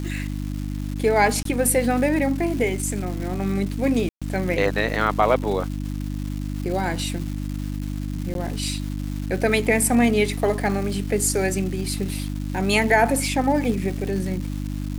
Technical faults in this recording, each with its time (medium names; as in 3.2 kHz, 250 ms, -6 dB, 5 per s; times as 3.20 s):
crackle 540 per s -31 dBFS
hum 50 Hz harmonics 6 -28 dBFS
1.43–1.45 s: dropout 23 ms
4.09–4.22 s: dropout 126 ms
8.34–8.35 s: dropout